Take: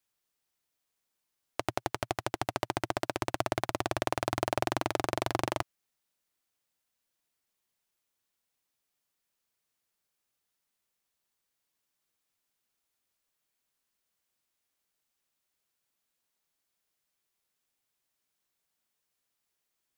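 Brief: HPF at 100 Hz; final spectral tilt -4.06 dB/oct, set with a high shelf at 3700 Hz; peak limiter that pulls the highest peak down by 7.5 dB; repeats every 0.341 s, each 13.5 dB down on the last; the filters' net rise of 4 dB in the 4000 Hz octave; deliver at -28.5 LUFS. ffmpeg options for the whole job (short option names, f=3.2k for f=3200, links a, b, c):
-af "highpass=100,highshelf=f=3.7k:g=-5.5,equalizer=f=4k:t=o:g=8.5,alimiter=limit=-15.5dB:level=0:latency=1,aecho=1:1:341|682:0.211|0.0444,volume=10.5dB"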